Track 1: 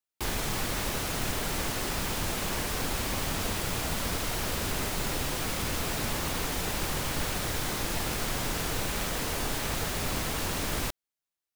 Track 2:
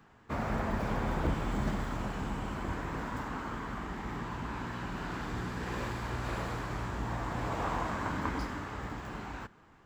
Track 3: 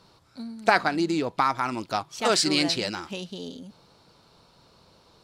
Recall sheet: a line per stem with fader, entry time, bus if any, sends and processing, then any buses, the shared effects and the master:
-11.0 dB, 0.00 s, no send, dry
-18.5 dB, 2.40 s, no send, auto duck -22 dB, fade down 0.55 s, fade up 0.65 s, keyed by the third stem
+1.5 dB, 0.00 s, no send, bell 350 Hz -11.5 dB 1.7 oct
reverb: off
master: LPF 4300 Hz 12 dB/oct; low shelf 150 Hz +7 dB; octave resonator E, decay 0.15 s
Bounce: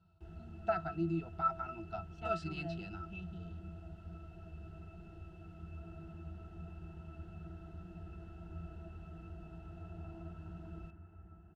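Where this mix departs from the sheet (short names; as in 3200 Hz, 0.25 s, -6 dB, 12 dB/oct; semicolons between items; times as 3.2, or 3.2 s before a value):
stem 2 -18.5 dB -> -10.0 dB; master: missing LPF 4300 Hz 12 dB/oct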